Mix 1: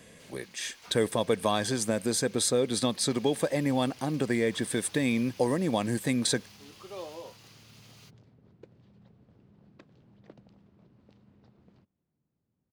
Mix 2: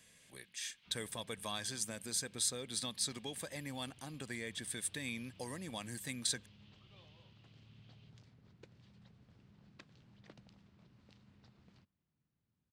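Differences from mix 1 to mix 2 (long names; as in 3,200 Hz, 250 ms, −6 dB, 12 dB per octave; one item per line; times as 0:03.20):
first sound: add transistor ladder low-pass 3,700 Hz, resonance 50%
second sound +12.0 dB
master: add guitar amp tone stack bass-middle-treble 5-5-5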